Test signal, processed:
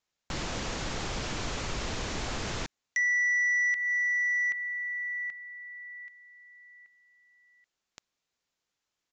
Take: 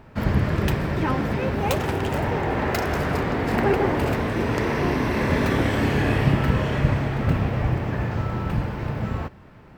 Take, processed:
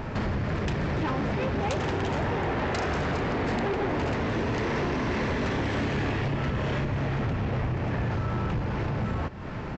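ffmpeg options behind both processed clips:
-af "acompressor=threshold=-39dB:ratio=4,aresample=16000,aeval=exprs='0.0596*sin(PI/2*2.82*val(0)/0.0596)':c=same,aresample=44100,volume=1dB"

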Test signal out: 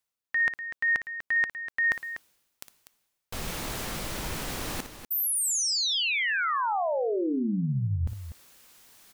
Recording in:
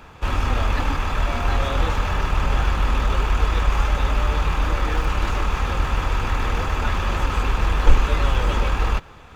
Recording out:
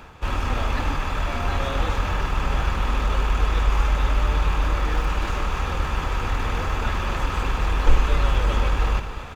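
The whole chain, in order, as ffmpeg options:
-af "areverse,acompressor=mode=upward:threshold=-24dB:ratio=2.5,areverse,aecho=1:1:58.31|244.9:0.282|0.282,volume=-2.5dB"

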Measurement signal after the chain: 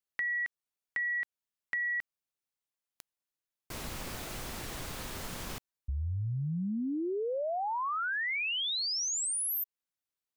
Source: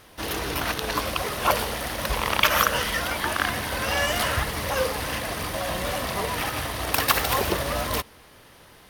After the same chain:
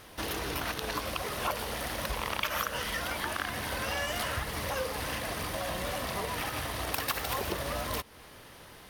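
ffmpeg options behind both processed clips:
-af "acompressor=threshold=-34dB:ratio=2.5"

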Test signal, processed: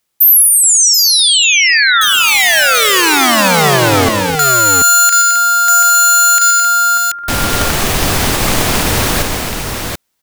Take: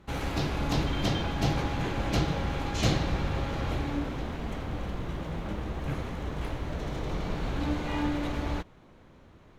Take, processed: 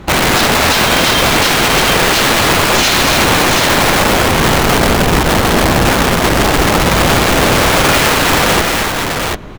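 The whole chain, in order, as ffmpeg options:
-filter_complex "[0:a]acrossover=split=1500[a][b];[a]aeval=exprs='(mod(31.6*val(0)+1,2)-1)/31.6':c=same[c];[c][b]amix=inputs=2:normalize=0,aecho=1:1:123|215|264|733:0.251|0.299|0.316|0.562,alimiter=level_in=24dB:limit=-1dB:release=50:level=0:latency=1,volume=-1dB"

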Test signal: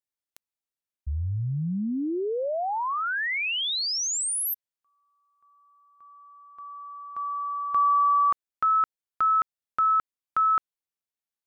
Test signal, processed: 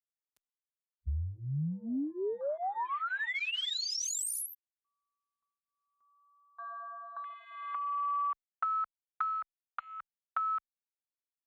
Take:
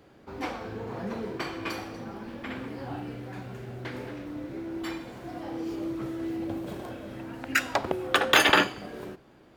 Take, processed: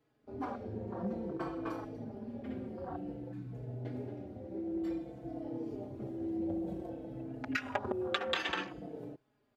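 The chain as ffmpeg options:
-filter_complex "[0:a]afwtdn=0.02,acompressor=threshold=-30dB:ratio=16:attack=17:release=208:knee=1:detection=peak,aresample=32000,aresample=44100,asplit=2[a][b];[b]adelay=4.2,afreqshift=-0.55[c];[a][c]amix=inputs=2:normalize=1"

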